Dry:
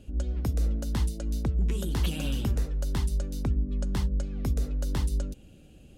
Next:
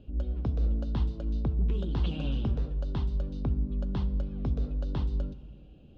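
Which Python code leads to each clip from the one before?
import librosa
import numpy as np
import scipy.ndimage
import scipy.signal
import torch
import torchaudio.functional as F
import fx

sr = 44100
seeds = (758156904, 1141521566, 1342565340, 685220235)

y = scipy.signal.sosfilt(scipy.signal.butter(4, 3600.0, 'lowpass', fs=sr, output='sos'), x)
y = fx.peak_eq(y, sr, hz=2000.0, db=-11.5, octaves=0.73)
y = fx.rev_fdn(y, sr, rt60_s=1.5, lf_ratio=1.3, hf_ratio=0.85, size_ms=42.0, drr_db=13.0)
y = F.gain(torch.from_numpy(y), -1.5).numpy()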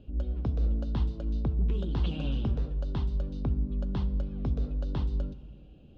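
y = x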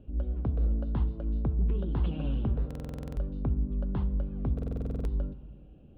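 y = scipy.signal.sosfilt(scipy.signal.butter(2, 2000.0, 'lowpass', fs=sr, output='sos'), x)
y = fx.buffer_glitch(y, sr, at_s=(2.66, 4.54), block=2048, repeats=10)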